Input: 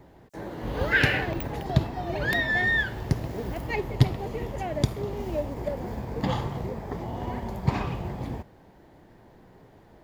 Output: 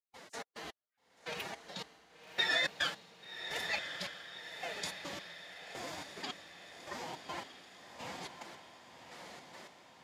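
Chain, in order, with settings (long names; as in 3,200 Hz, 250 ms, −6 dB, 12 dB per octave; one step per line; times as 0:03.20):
reversed playback
downward compressor 6 to 1, threshold −39 dBFS, peak gain reduction 24.5 dB
reversed playback
meter weighting curve ITU-R 468
gate pattern ".xx.x..." 107 BPM −60 dB
phase-vocoder pitch shift with formants kept +6 semitones
feedback delay with all-pass diffusion 1,132 ms, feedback 54%, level −8 dB
level +5.5 dB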